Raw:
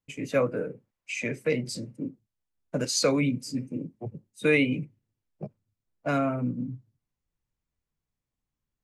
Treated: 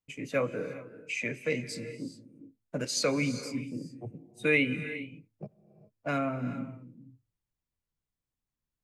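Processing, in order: dynamic bell 2.2 kHz, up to +5 dB, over -46 dBFS, Q 1.2; gated-style reverb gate 440 ms rising, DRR 12 dB; trim -5 dB

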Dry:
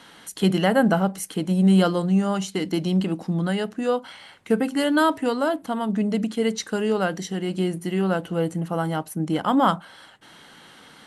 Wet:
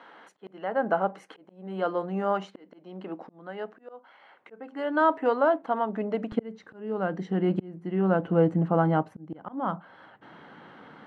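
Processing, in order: low-pass 1.4 kHz 12 dB/octave; slow attack 727 ms; high-pass 450 Hz 12 dB/octave, from 6.32 s 110 Hz; trim +3 dB

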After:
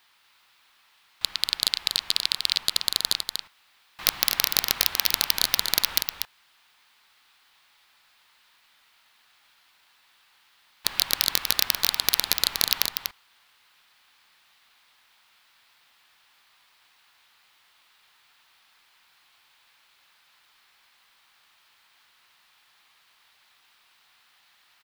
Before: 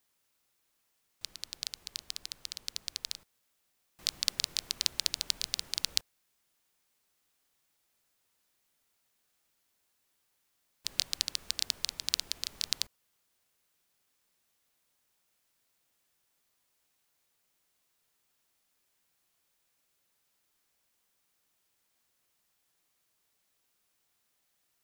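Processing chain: hard clipper -7 dBFS, distortion -18 dB; high-order bell 1.9 kHz +14.5 dB 2.9 oct; wavefolder -7.5 dBFS; on a send: delay 242 ms -6 dB; on the sum: trim +6 dB

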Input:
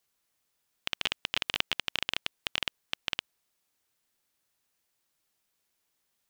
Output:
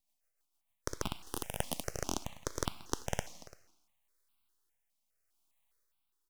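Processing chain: speakerphone echo 340 ms, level -18 dB; gain riding 0.5 s; 1.16–1.83 s: resonant high shelf 5.5 kHz +10 dB, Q 3; rotary cabinet horn 6.7 Hz, later 0.8 Hz, at 2.77 s; peaking EQ 86 Hz +13 dB 0.23 oct; plate-style reverb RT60 1.1 s, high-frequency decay 0.95×, DRR 10 dB; full-wave rectifier; crackling interface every 0.43 s, samples 1024, repeat, from 0.79 s; stepped phaser 4.9 Hz 400–1800 Hz; trim +2.5 dB

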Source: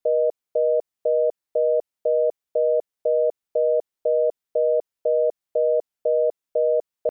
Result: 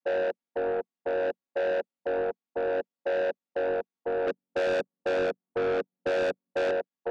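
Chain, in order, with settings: vocoder on a held chord major triad, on F#3; 4.27–6.71 s: tilt EQ -5.5 dB/octave; saturation -24.5 dBFS, distortion -6 dB

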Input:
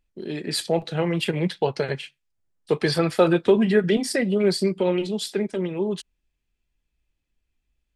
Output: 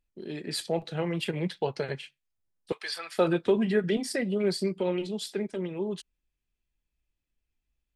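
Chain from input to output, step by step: 2.72–3.18 s: high-pass 1.3 kHz 12 dB/octave; trim -6.5 dB

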